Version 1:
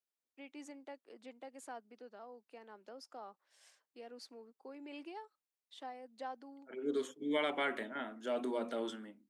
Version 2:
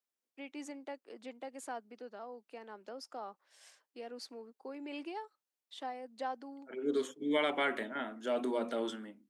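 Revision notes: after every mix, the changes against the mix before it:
first voice +5.5 dB; second voice +3.0 dB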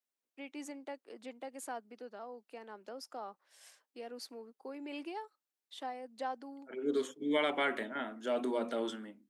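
first voice: remove LPF 8800 Hz 12 dB/oct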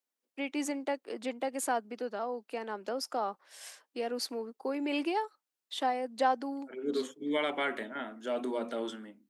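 first voice +11.0 dB

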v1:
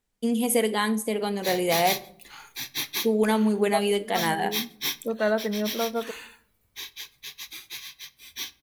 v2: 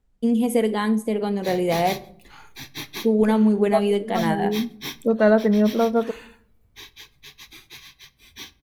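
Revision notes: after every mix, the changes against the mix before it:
second voice +5.5 dB; master: add tilt -2.5 dB/oct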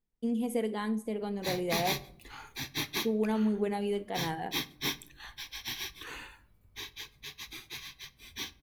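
first voice -11.0 dB; second voice: muted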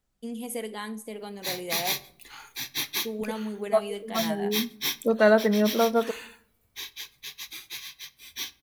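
second voice: unmuted; master: add tilt +2.5 dB/oct

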